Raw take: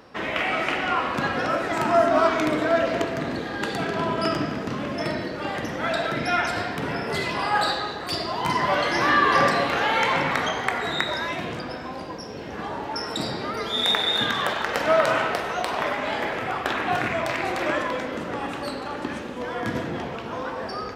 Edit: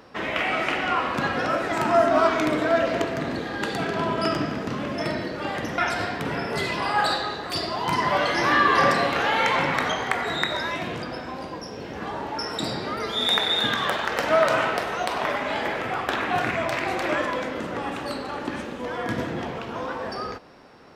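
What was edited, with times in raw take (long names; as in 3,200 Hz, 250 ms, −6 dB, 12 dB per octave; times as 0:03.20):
0:05.78–0:06.35: remove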